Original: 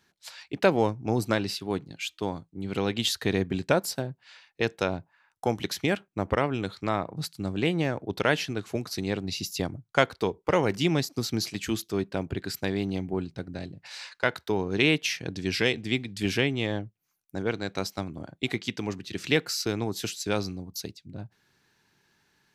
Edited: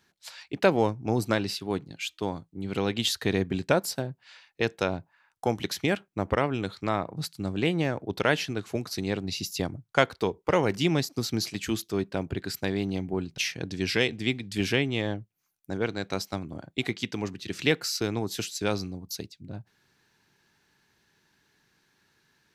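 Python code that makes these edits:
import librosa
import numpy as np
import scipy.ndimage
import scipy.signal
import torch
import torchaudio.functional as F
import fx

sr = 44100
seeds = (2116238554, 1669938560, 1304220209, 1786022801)

y = fx.edit(x, sr, fx.cut(start_s=13.38, length_s=1.65), tone=tone)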